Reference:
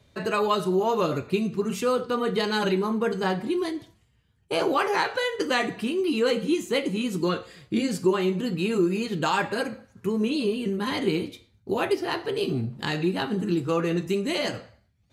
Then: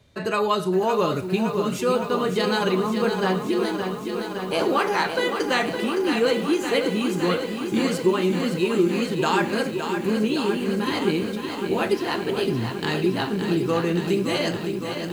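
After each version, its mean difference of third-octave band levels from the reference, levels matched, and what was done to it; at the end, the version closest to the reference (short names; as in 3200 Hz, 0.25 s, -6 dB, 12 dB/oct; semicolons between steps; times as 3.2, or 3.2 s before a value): 6.0 dB: lo-fi delay 0.564 s, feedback 80%, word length 8-bit, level -7.5 dB; gain +1.5 dB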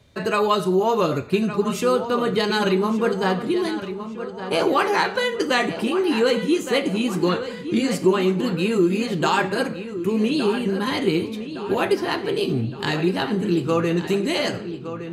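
2.5 dB: darkening echo 1.164 s, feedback 54%, low-pass 4900 Hz, level -11 dB; gain +4 dB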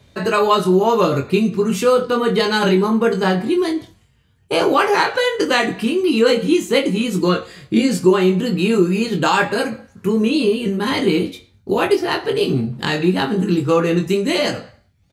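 1.0 dB: doubler 22 ms -5.5 dB; gain +7.5 dB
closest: third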